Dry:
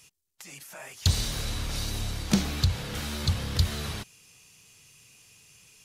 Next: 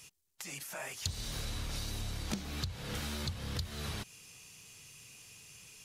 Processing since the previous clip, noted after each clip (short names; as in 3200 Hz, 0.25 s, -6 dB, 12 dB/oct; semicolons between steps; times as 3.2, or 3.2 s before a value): compressor 10:1, threshold -36 dBFS, peak gain reduction 19 dB; gain +1.5 dB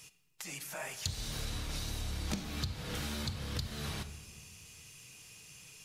reverb RT60 1.3 s, pre-delay 6 ms, DRR 9.5 dB